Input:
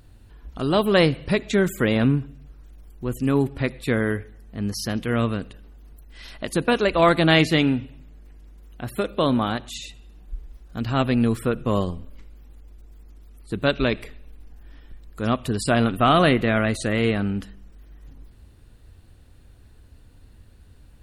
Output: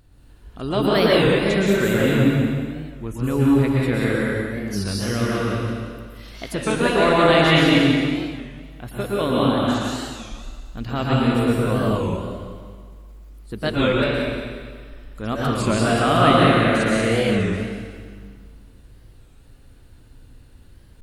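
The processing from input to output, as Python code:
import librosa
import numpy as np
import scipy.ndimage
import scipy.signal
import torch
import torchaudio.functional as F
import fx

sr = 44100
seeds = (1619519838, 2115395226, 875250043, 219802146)

y = fx.high_shelf(x, sr, hz=10000.0, db=-10.0, at=(2.19, 3.06))
y = fx.echo_feedback(y, sr, ms=181, feedback_pct=38, wet_db=-8.5)
y = fx.rev_plate(y, sr, seeds[0], rt60_s=1.7, hf_ratio=0.95, predelay_ms=105, drr_db=-5.5)
y = fx.record_warp(y, sr, rpm=33.33, depth_cents=160.0)
y = y * 10.0 ** (-4.0 / 20.0)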